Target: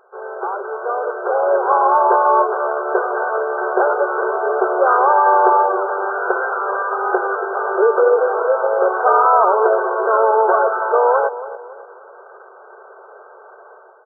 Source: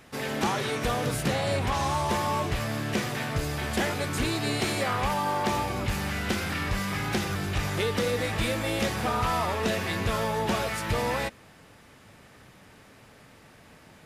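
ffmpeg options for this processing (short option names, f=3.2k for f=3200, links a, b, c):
-filter_complex "[0:a]afftfilt=real='re*between(b*sr/4096,360,1600)':imag='im*between(b*sr/4096,360,1600)':win_size=4096:overlap=0.75,dynaudnorm=f=860:g=3:m=12dB,asplit=2[a][b];[b]adelay=282,lowpass=f=960:p=1,volume=-12.5dB,asplit=2[c][d];[d]adelay=282,lowpass=f=960:p=1,volume=0.45,asplit=2[e][f];[f]adelay=282,lowpass=f=960:p=1,volume=0.45,asplit=2[g][h];[h]adelay=282,lowpass=f=960:p=1,volume=0.45[i];[a][c][e][g][i]amix=inputs=5:normalize=0,volume=4dB"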